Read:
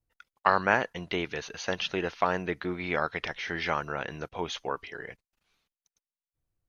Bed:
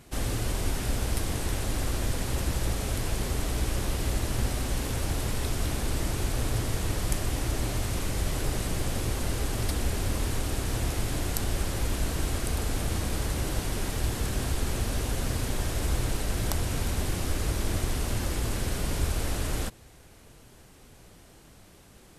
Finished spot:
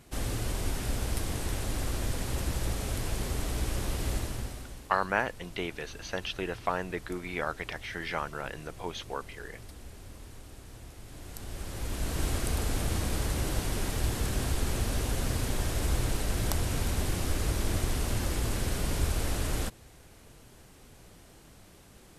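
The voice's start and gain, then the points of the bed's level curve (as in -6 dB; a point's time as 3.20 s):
4.45 s, -4.0 dB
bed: 4.16 s -3 dB
4.89 s -18.5 dB
11.00 s -18.5 dB
12.24 s -1 dB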